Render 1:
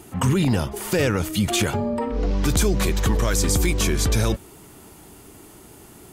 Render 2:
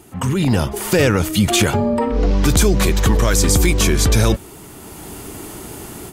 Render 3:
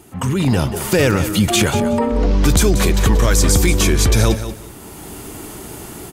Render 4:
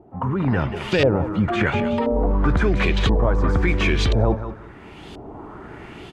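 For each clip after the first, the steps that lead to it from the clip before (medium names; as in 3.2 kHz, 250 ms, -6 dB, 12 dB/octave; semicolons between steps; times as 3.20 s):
level rider gain up to 14 dB; trim -1 dB
feedback delay 184 ms, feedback 21%, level -11.5 dB
LFO low-pass saw up 0.97 Hz 630–3900 Hz; trim -5 dB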